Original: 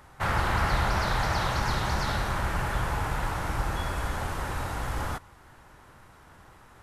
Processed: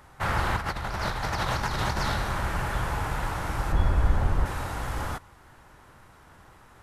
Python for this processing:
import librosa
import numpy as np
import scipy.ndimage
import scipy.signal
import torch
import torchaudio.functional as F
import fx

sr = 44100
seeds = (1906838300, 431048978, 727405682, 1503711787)

y = fx.over_compress(x, sr, threshold_db=-28.0, ratio=-0.5, at=(0.56, 2.14))
y = fx.tilt_eq(y, sr, slope=-2.5, at=(3.72, 4.46))